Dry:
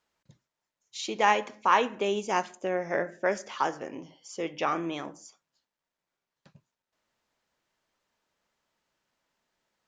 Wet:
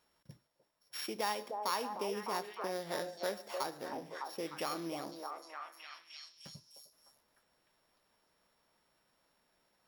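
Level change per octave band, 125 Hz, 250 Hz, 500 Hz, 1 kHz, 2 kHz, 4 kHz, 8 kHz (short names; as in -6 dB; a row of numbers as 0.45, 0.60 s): -8.0, -9.0, -9.0, -11.0, -12.5, -4.5, -4.5 dB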